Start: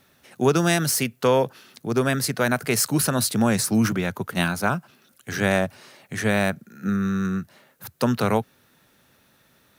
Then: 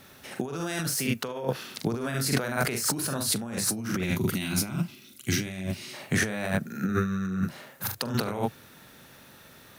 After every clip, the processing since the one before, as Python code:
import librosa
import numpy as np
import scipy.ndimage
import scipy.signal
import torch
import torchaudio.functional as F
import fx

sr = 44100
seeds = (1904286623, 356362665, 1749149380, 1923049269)

y = fx.room_early_taps(x, sr, ms=(43, 73), db=(-5.0, -11.5))
y = fx.over_compress(y, sr, threshold_db=-29.0, ratio=-1.0)
y = fx.spec_box(y, sr, start_s=4.04, length_s=1.9, low_hz=390.0, high_hz=1900.0, gain_db=-12)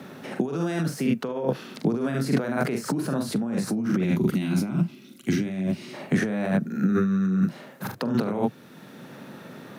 y = scipy.signal.sosfilt(scipy.signal.butter(4, 170.0, 'highpass', fs=sr, output='sos'), x)
y = fx.tilt_eq(y, sr, slope=-3.5)
y = fx.band_squash(y, sr, depth_pct=40)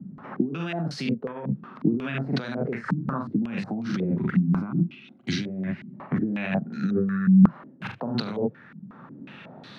y = fx.peak_eq(x, sr, hz=450.0, db=-9.0, octaves=2.0)
y = fx.filter_held_lowpass(y, sr, hz=5.5, low_hz=200.0, high_hz=4200.0)